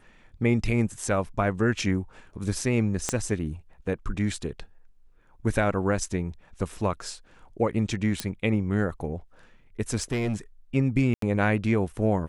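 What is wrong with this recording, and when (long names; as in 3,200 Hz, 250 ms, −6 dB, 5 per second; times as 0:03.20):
0:03.09: click −10 dBFS
0:08.20: click −11 dBFS
0:10.01–0:10.36: clipping −23 dBFS
0:11.14–0:11.22: drop-out 83 ms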